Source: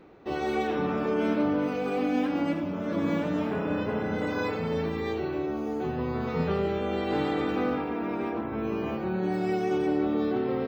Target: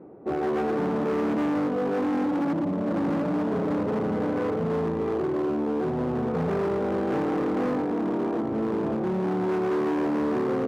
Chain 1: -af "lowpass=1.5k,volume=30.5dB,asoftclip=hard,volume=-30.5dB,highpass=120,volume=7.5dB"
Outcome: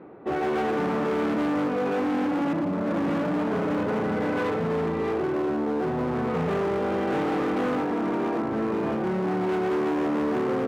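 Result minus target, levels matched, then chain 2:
2000 Hz band +4.5 dB
-af "lowpass=690,volume=30.5dB,asoftclip=hard,volume=-30.5dB,highpass=120,volume=7.5dB"

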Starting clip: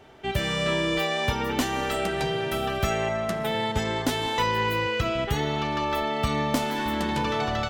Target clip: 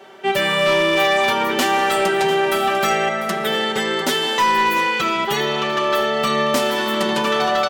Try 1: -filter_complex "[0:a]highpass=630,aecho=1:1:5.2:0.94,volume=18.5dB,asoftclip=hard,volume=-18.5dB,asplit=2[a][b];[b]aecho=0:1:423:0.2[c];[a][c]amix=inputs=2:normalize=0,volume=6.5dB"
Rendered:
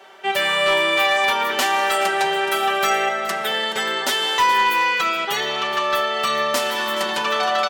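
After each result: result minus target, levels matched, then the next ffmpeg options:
250 Hz band -8.5 dB; echo 0.274 s early
-filter_complex "[0:a]highpass=300,aecho=1:1:5.2:0.94,volume=18.5dB,asoftclip=hard,volume=-18.5dB,asplit=2[a][b];[b]aecho=0:1:423:0.2[c];[a][c]amix=inputs=2:normalize=0,volume=6.5dB"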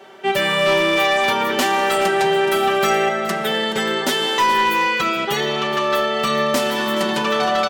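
echo 0.274 s early
-filter_complex "[0:a]highpass=300,aecho=1:1:5.2:0.94,volume=18.5dB,asoftclip=hard,volume=-18.5dB,asplit=2[a][b];[b]aecho=0:1:697:0.2[c];[a][c]amix=inputs=2:normalize=0,volume=6.5dB"

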